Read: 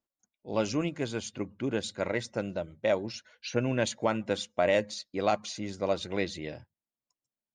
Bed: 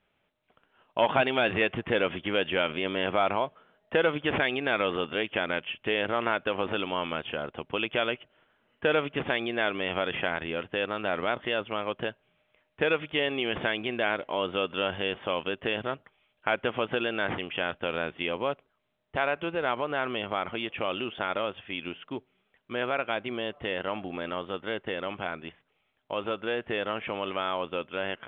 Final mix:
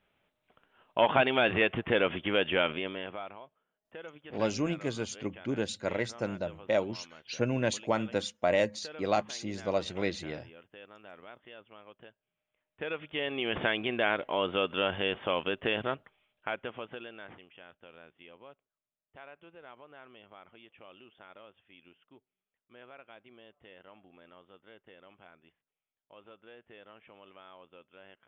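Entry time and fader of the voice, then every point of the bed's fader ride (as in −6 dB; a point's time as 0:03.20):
3.85 s, −1.0 dB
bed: 0:02.68 −0.5 dB
0:03.40 −21 dB
0:12.13 −21 dB
0:13.61 −0.5 dB
0:15.97 −0.5 dB
0:17.56 −22.5 dB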